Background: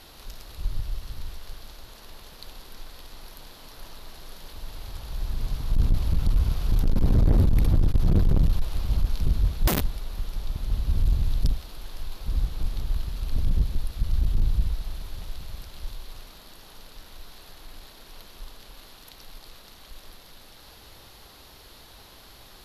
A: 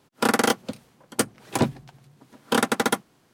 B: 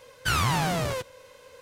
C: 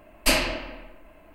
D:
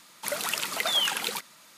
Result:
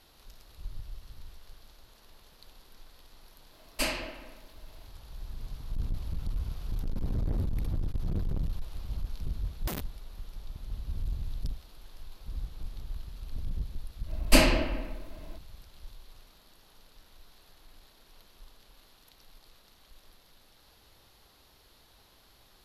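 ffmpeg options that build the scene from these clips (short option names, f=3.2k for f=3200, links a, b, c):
-filter_complex "[3:a]asplit=2[a][b];[0:a]volume=-11.5dB[c];[b]lowshelf=f=470:g=10[d];[a]atrim=end=1.34,asetpts=PTS-STARTPTS,volume=-9.5dB,afade=t=in:d=0.004:c=hsin,afade=t=out:st=1.336:d=0.004:c=hsin,adelay=155673S[e];[d]atrim=end=1.34,asetpts=PTS-STARTPTS,volume=-2.5dB,afade=t=in:d=0.05,afade=t=out:st=1.29:d=0.05,adelay=14060[f];[c][e][f]amix=inputs=3:normalize=0"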